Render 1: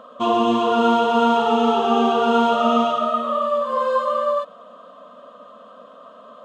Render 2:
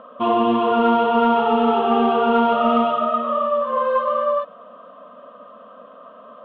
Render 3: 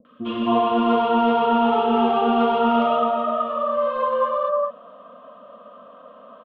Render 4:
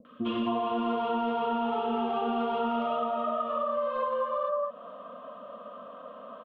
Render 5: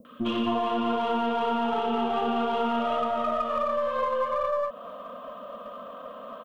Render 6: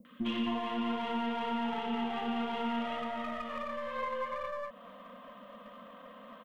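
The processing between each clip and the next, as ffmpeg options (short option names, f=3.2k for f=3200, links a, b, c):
-af "lowpass=f=2.9k:w=0.5412,lowpass=f=2.9k:w=1.3066,acontrast=23,volume=-4dB"
-filter_complex "[0:a]acrossover=split=350|1500[a][b][c];[c]adelay=50[d];[b]adelay=260[e];[a][e][d]amix=inputs=3:normalize=0"
-af "acompressor=threshold=-27dB:ratio=6"
-filter_complex "[0:a]aemphasis=mode=production:type=50kf,asplit=2[a][b];[b]aeval=exprs='clip(val(0),-1,0.00891)':c=same,volume=-5.5dB[c];[a][c]amix=inputs=2:normalize=0"
-af "equalizer=f=100:t=o:w=0.33:g=-11,equalizer=f=200:t=o:w=0.33:g=5,equalizer=f=400:t=o:w=0.33:g=-11,equalizer=f=630:t=o:w=0.33:g=-9,equalizer=f=1.25k:t=o:w=0.33:g=-8,equalizer=f=2k:t=o:w=0.33:g=11,volume=-5.5dB"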